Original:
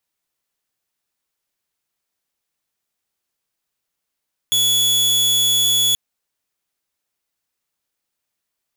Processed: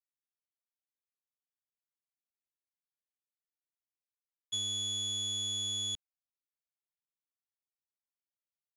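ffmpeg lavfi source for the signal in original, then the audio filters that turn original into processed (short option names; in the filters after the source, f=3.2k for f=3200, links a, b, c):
-f lavfi -i "aevalsrc='0.266*(2*mod(3400*t,1)-1)':d=1.43:s=44100"
-filter_complex "[0:a]agate=range=-33dB:threshold=-9dB:ratio=3:detection=peak,acrossover=split=430[a][b];[b]acompressor=threshold=-32dB:ratio=6[c];[a][c]amix=inputs=2:normalize=0,lowpass=f=8.4k:w=0.5412,lowpass=f=8.4k:w=1.3066"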